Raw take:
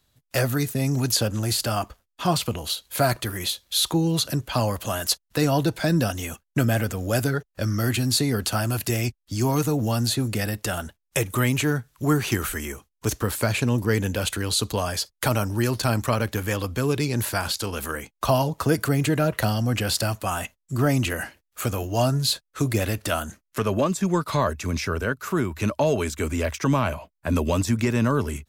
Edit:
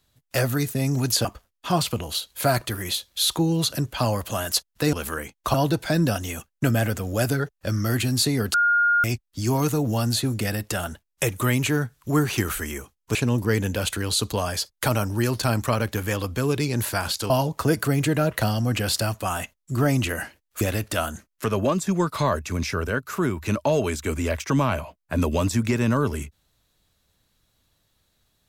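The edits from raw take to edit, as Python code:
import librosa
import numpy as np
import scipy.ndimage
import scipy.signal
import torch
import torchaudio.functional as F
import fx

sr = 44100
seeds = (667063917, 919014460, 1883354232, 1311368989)

y = fx.edit(x, sr, fx.cut(start_s=1.25, length_s=0.55),
    fx.bleep(start_s=8.48, length_s=0.5, hz=1420.0, db=-16.0),
    fx.cut(start_s=13.09, length_s=0.46),
    fx.move(start_s=17.7, length_s=0.61, to_s=5.48),
    fx.cut(start_s=21.62, length_s=1.13), tone=tone)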